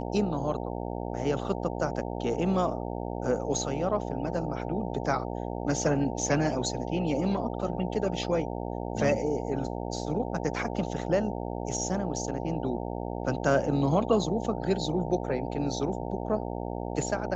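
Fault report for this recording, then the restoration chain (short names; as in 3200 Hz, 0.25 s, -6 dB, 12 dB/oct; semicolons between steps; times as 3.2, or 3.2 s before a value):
buzz 60 Hz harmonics 15 -34 dBFS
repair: de-hum 60 Hz, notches 15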